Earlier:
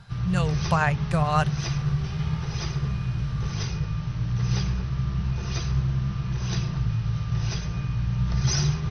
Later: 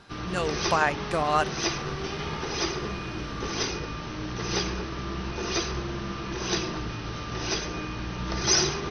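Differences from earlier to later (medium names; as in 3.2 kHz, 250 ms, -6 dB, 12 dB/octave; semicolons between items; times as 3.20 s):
background +6.5 dB; master: add resonant low shelf 200 Hz -13 dB, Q 3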